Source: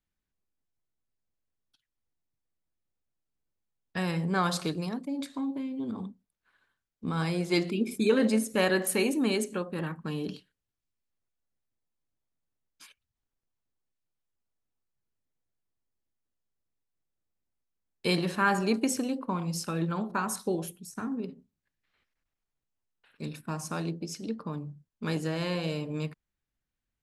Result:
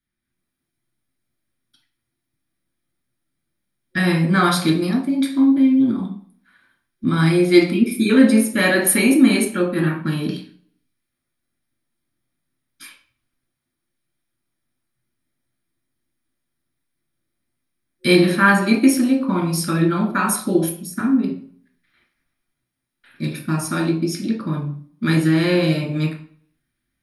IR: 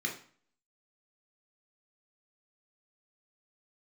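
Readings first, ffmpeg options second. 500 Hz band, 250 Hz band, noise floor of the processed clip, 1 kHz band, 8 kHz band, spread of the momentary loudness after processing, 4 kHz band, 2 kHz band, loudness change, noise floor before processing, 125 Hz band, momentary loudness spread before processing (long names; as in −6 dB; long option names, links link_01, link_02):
+9.5 dB, +14.5 dB, −79 dBFS, +9.5 dB, +12.0 dB, 12 LU, +10.0 dB, +13.0 dB, +12.5 dB, below −85 dBFS, +12.5 dB, 13 LU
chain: -filter_complex "[1:a]atrim=start_sample=2205[link_01];[0:a][link_01]afir=irnorm=-1:irlink=0,dynaudnorm=framelen=210:gausssize=3:maxgain=7.5dB,superequalizer=7b=0.447:15b=0.398:16b=2.51,volume=1dB"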